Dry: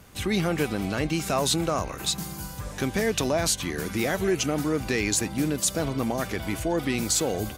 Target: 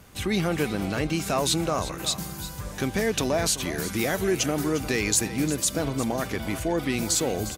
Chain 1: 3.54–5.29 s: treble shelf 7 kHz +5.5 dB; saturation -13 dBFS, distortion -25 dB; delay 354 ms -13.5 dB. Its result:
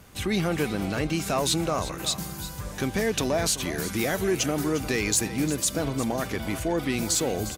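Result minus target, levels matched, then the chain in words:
saturation: distortion +19 dB
3.54–5.29 s: treble shelf 7 kHz +5.5 dB; saturation -3 dBFS, distortion -44 dB; delay 354 ms -13.5 dB

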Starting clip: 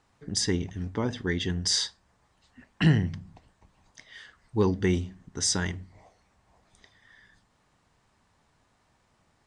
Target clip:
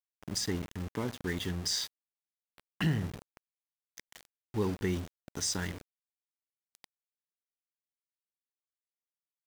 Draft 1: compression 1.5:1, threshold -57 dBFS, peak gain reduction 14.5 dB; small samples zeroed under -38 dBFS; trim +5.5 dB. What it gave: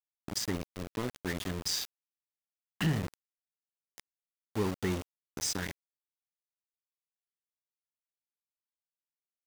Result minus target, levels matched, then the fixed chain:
small samples zeroed: distortion +7 dB
compression 1.5:1, threshold -57 dBFS, peak gain reduction 14.5 dB; small samples zeroed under -44 dBFS; trim +5.5 dB

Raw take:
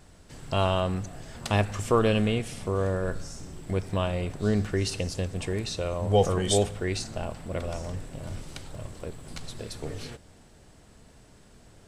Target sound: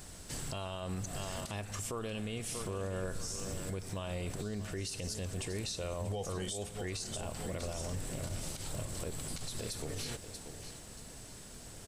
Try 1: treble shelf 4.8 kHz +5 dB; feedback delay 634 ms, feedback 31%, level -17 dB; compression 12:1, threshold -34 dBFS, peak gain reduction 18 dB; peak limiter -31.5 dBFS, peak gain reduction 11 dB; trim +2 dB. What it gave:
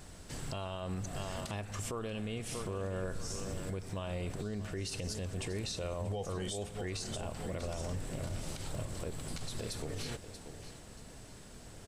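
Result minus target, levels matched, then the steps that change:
8 kHz band -3.5 dB
change: treble shelf 4.8 kHz +13.5 dB

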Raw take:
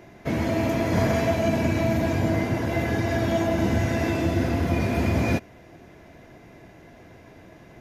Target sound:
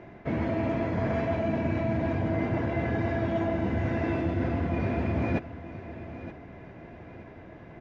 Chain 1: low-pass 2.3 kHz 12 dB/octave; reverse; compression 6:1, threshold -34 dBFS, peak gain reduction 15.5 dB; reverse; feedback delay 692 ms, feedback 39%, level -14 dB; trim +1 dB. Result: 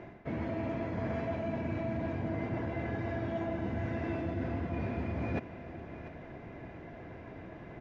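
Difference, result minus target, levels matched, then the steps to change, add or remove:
compression: peak gain reduction +7 dB; echo 231 ms early
change: compression 6:1, threshold -25.5 dBFS, peak gain reduction 8.5 dB; change: feedback delay 923 ms, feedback 39%, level -14 dB

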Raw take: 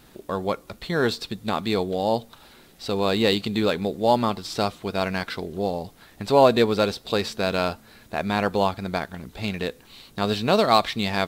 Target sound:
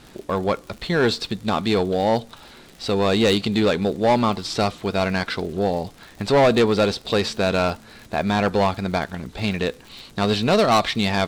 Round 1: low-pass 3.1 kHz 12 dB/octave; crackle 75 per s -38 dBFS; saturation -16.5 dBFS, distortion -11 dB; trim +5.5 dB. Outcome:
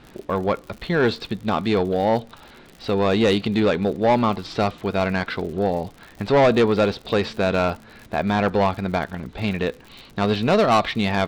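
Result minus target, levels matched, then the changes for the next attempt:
8 kHz band -7.0 dB
change: low-pass 8.5 kHz 12 dB/octave

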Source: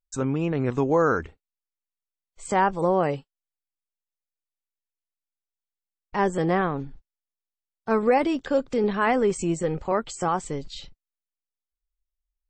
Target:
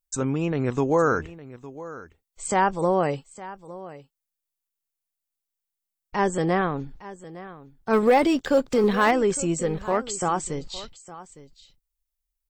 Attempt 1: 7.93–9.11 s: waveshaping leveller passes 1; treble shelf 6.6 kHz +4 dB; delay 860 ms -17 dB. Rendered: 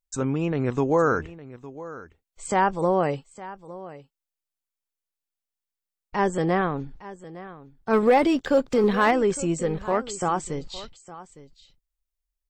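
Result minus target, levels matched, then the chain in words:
8 kHz band -4.0 dB
7.93–9.11 s: waveshaping leveller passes 1; treble shelf 6.6 kHz +11.5 dB; delay 860 ms -17 dB

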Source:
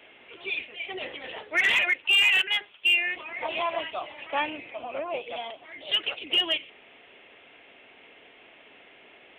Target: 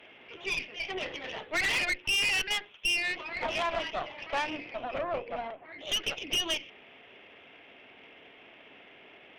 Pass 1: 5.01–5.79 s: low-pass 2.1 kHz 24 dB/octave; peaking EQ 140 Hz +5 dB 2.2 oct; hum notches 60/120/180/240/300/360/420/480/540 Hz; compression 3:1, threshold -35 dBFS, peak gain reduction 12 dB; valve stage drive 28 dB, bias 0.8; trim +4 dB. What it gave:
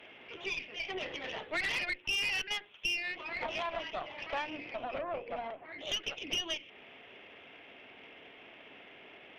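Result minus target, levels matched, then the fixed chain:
compression: peak gain reduction +6.5 dB
5.01–5.79 s: low-pass 2.1 kHz 24 dB/octave; peaking EQ 140 Hz +5 dB 2.2 oct; hum notches 60/120/180/240/300/360/420/480/540 Hz; compression 3:1, threshold -25 dBFS, peak gain reduction 5.5 dB; valve stage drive 28 dB, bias 0.8; trim +4 dB

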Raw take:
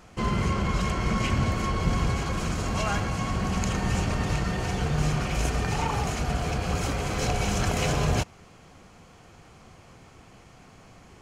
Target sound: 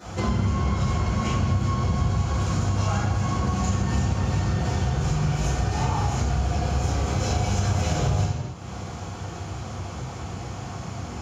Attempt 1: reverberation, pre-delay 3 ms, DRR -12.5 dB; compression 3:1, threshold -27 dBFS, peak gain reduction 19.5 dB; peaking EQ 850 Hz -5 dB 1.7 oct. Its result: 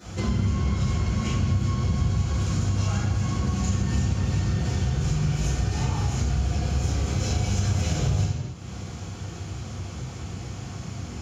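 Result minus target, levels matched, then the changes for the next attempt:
1 kHz band -7.0 dB
change: peaking EQ 850 Hz +3.5 dB 1.7 oct

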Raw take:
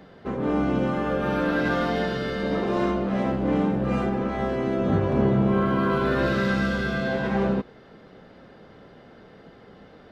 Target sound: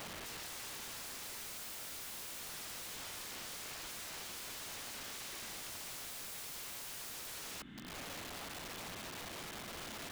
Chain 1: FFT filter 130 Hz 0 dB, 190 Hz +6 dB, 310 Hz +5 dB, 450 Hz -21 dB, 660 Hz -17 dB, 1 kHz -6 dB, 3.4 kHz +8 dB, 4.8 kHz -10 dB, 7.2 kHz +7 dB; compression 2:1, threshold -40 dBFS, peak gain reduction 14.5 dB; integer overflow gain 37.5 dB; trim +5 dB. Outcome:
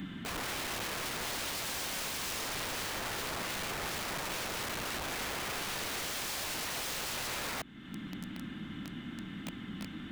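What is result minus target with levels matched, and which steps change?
integer overflow: distortion -12 dB
change: integer overflow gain 46.5 dB

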